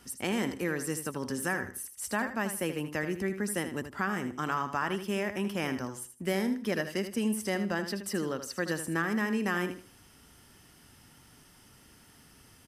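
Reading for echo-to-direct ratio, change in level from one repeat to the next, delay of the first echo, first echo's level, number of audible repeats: -9.5 dB, -12.0 dB, 79 ms, -10.0 dB, 3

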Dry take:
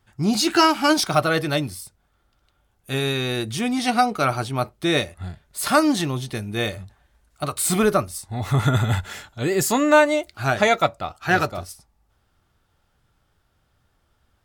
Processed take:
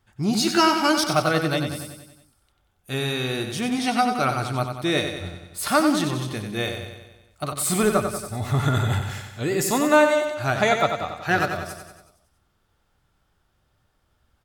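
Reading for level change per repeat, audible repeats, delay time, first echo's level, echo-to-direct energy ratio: -5.0 dB, 6, 93 ms, -7.0 dB, -5.5 dB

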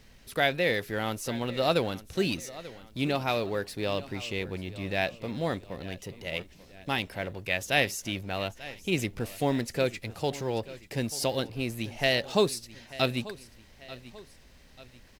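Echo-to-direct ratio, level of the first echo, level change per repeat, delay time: -16.5 dB, -17.5 dB, -7.0 dB, 889 ms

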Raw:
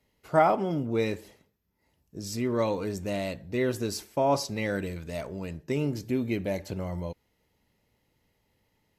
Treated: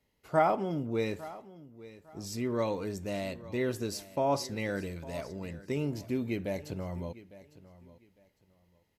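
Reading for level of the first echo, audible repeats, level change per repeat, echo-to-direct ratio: -18.0 dB, 2, -12.5 dB, -17.5 dB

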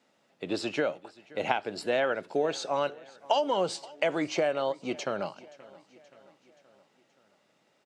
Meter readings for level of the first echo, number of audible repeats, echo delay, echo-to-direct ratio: -22.0 dB, 3, 526 ms, -20.5 dB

